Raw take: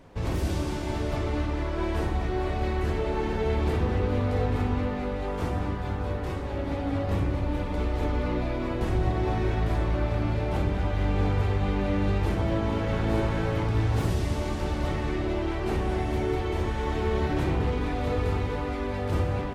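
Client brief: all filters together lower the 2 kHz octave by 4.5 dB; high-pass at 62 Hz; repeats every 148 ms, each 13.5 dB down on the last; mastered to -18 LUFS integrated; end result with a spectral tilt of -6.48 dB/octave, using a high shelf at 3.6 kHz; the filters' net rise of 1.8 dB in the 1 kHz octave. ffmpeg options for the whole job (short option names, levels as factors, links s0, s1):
-af "highpass=62,equalizer=f=1000:t=o:g=4,equalizer=f=2000:t=o:g=-5.5,highshelf=f=3600:g=-6.5,aecho=1:1:148|296:0.211|0.0444,volume=3.35"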